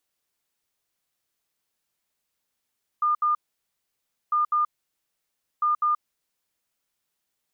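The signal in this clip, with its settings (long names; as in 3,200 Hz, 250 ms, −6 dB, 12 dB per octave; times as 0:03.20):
beeps in groups sine 1,210 Hz, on 0.13 s, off 0.07 s, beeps 2, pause 0.97 s, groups 3, −19 dBFS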